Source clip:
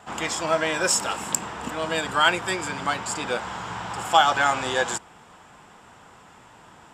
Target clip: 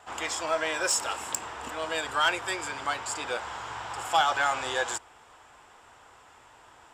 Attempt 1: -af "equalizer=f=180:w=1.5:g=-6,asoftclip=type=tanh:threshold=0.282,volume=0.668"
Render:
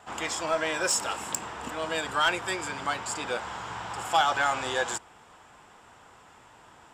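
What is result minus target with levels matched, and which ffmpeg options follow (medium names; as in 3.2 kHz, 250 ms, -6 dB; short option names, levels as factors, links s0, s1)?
250 Hz band +3.5 dB
-af "equalizer=f=180:w=1.5:g=-17,asoftclip=type=tanh:threshold=0.282,volume=0.668"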